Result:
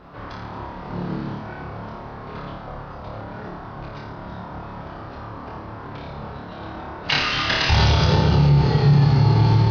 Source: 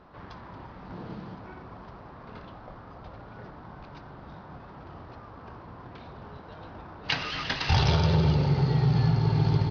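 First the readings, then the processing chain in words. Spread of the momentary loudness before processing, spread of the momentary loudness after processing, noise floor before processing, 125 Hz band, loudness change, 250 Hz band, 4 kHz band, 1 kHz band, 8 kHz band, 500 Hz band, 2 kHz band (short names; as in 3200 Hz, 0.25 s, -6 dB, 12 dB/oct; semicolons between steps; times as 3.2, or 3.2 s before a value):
21 LU, 19 LU, -47 dBFS, +7.5 dB, +6.5 dB, +7.0 dB, +9.0 dB, +8.5 dB, n/a, +7.5 dB, +9.5 dB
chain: on a send: flutter echo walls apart 4.8 m, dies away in 0.66 s; on the sum: maximiser +14 dB; gain -7 dB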